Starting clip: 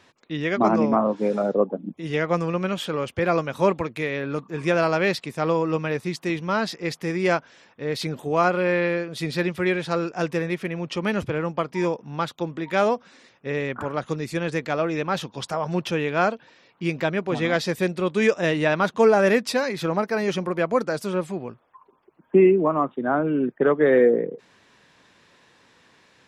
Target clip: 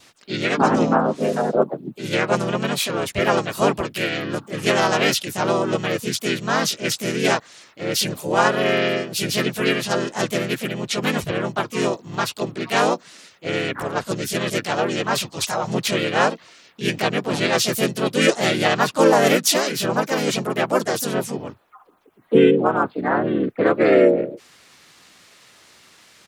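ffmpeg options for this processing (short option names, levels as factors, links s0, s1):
-filter_complex "[0:a]crystalizer=i=4:c=0,adynamicequalizer=threshold=0.01:dfrequency=1800:dqfactor=3.4:tfrequency=1800:tqfactor=3.4:attack=5:release=100:ratio=0.375:range=2:mode=cutabove:tftype=bell,asplit=4[s0][s1][s2][s3];[s1]asetrate=33038,aresample=44100,atempo=1.33484,volume=0.794[s4];[s2]asetrate=52444,aresample=44100,atempo=0.840896,volume=1[s5];[s3]asetrate=58866,aresample=44100,atempo=0.749154,volume=0.447[s6];[s0][s4][s5][s6]amix=inputs=4:normalize=0,volume=0.708"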